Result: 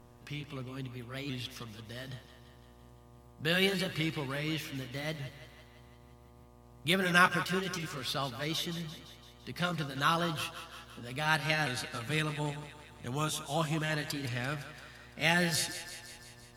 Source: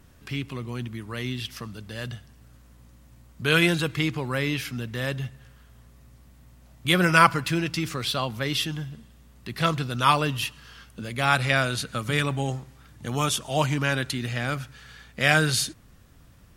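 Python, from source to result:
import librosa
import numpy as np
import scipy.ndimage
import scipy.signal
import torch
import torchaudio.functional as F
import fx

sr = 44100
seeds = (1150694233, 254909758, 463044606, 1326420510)

y = fx.pitch_ramps(x, sr, semitones=2.5, every_ms=1296)
y = fx.echo_thinned(y, sr, ms=170, feedback_pct=64, hz=400.0, wet_db=-11.5)
y = fx.dmg_buzz(y, sr, base_hz=120.0, harmonics=10, level_db=-52.0, tilt_db=-4, odd_only=False)
y = y * librosa.db_to_amplitude(-7.0)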